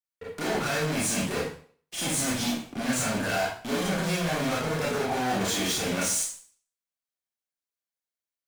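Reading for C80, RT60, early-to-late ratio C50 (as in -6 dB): 7.0 dB, 0.50 s, 3.0 dB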